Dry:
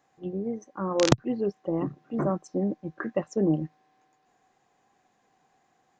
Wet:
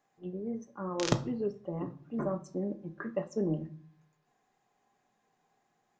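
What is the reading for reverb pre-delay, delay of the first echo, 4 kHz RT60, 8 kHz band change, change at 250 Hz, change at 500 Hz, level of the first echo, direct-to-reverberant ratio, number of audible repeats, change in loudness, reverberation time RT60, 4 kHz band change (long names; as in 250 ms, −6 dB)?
5 ms, no echo audible, 0.35 s, −7.0 dB, −7.0 dB, −7.0 dB, no echo audible, 6.0 dB, no echo audible, −6.5 dB, 0.50 s, −6.5 dB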